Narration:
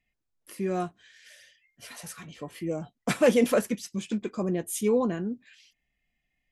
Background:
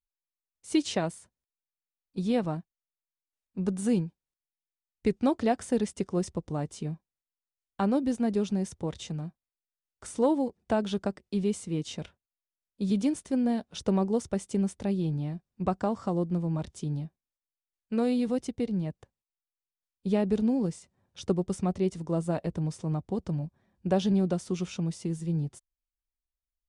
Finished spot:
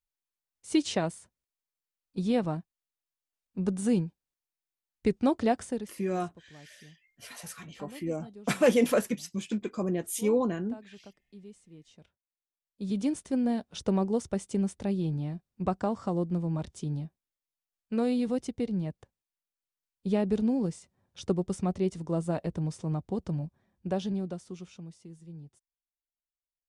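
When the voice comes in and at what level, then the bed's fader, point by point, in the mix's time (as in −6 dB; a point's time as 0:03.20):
5.40 s, −1.5 dB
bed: 0:05.61 0 dB
0:06.06 −20.5 dB
0:11.89 −20.5 dB
0:13.13 −1 dB
0:23.53 −1 dB
0:25.06 −16 dB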